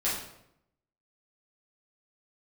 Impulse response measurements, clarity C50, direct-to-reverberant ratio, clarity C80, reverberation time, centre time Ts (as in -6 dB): 2.5 dB, -9.0 dB, 6.0 dB, 0.80 s, 49 ms